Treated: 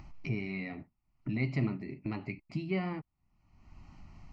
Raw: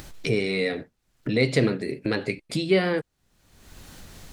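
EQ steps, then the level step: tape spacing loss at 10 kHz 23 dB; high shelf 5300 Hz -8.5 dB; fixed phaser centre 2400 Hz, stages 8; -4.5 dB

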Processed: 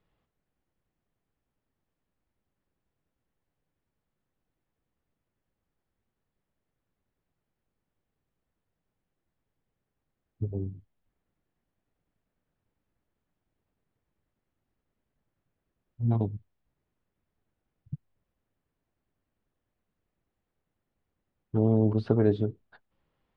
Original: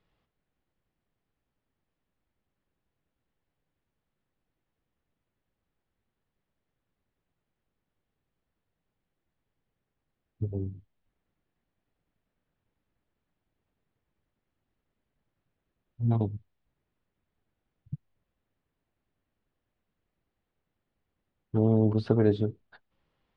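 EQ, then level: high shelf 2900 Hz -6.5 dB; 0.0 dB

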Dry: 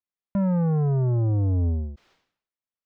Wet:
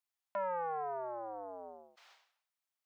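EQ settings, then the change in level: Chebyshev high-pass 710 Hz, order 3; +3.0 dB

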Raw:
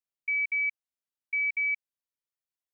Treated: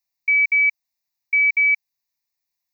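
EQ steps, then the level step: high shelf 2300 Hz +8.5 dB; fixed phaser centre 2100 Hz, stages 8; +7.5 dB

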